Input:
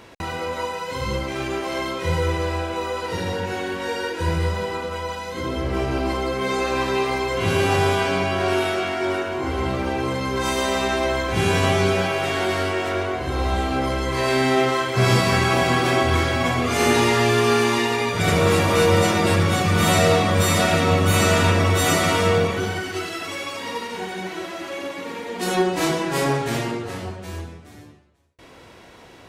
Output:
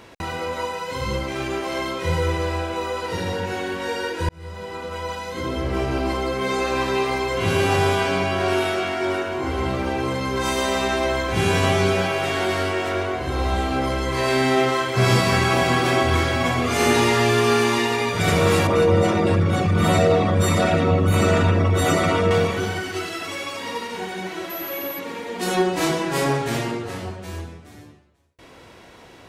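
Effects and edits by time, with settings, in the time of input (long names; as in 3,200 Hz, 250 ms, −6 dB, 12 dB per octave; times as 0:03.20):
0:04.29–0:05.10: fade in
0:18.67–0:22.31: spectral envelope exaggerated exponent 1.5
0:24.49–0:24.98: steady tone 12,000 Hz −31 dBFS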